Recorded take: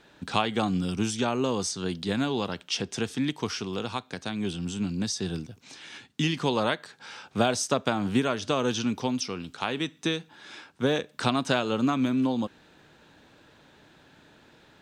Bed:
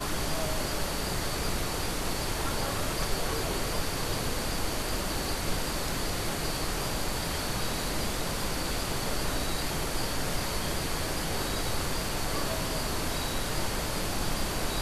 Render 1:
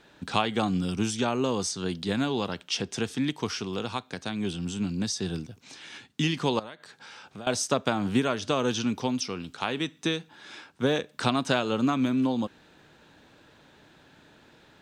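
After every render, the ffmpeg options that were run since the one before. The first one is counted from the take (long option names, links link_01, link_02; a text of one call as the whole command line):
ffmpeg -i in.wav -filter_complex "[0:a]asettb=1/sr,asplit=3[link_01][link_02][link_03];[link_01]atrim=end=6.594[link_04];[link_02]atrim=start=6.59:end=7.47,asetpts=PTS-STARTPTS,afade=type=in:duration=0.004:curve=qsin,afade=type=out:start_time=0.876:duration=0.004:curve=qsin,acompressor=threshold=-43dB:ratio=3:attack=3.2:release=140:knee=1:detection=peak[link_05];[link_03]atrim=start=7.466[link_06];[link_04][link_05]acrossfade=duration=0.004:curve1=hsin:curve2=qsin[link_07];[link_07][link_06]acrossfade=duration=0.004:curve1=qsin:curve2=hsin" out.wav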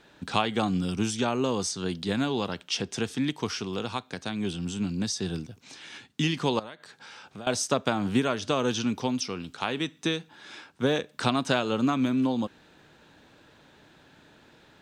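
ffmpeg -i in.wav -af anull out.wav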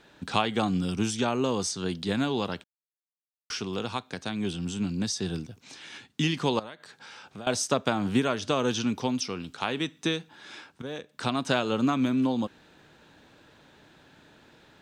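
ffmpeg -i in.wav -filter_complex "[0:a]asplit=4[link_01][link_02][link_03][link_04];[link_01]atrim=end=2.64,asetpts=PTS-STARTPTS,afade=type=out:start_time=2.636:duration=0.004:curve=hsin[link_05];[link_02]atrim=start=2.64:end=3.5,asetpts=PTS-STARTPTS,volume=0[link_06];[link_03]atrim=start=3.5:end=10.82,asetpts=PTS-STARTPTS,afade=type=in:duration=0.004:curve=hsin,afade=type=out:start_time=7.316:duration=0.004:curve=hsin:silence=0.16788[link_07];[link_04]atrim=start=10.82,asetpts=PTS-STARTPTS,afade=type=in:duration=0.76:silence=0.16788[link_08];[link_05][link_06][link_07][link_08]concat=n=4:v=0:a=1" out.wav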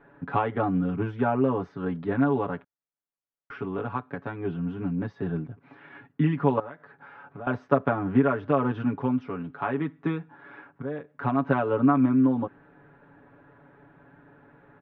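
ffmpeg -i in.wav -af "lowpass=frequency=1700:width=0.5412,lowpass=frequency=1700:width=1.3066,aecho=1:1:7.1:0.95" out.wav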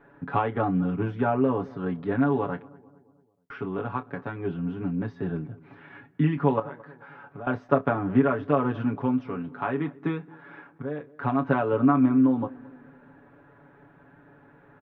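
ffmpeg -i in.wav -filter_complex "[0:a]asplit=2[link_01][link_02];[link_02]adelay=27,volume=-13dB[link_03];[link_01][link_03]amix=inputs=2:normalize=0,asplit=2[link_04][link_05];[link_05]adelay=221,lowpass=frequency=1300:poles=1,volume=-21.5dB,asplit=2[link_06][link_07];[link_07]adelay=221,lowpass=frequency=1300:poles=1,volume=0.51,asplit=2[link_08][link_09];[link_09]adelay=221,lowpass=frequency=1300:poles=1,volume=0.51,asplit=2[link_10][link_11];[link_11]adelay=221,lowpass=frequency=1300:poles=1,volume=0.51[link_12];[link_04][link_06][link_08][link_10][link_12]amix=inputs=5:normalize=0" out.wav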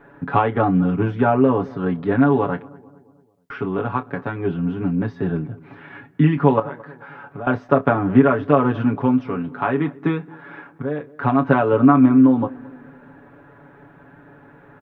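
ffmpeg -i in.wav -af "volume=7.5dB,alimiter=limit=-1dB:level=0:latency=1" out.wav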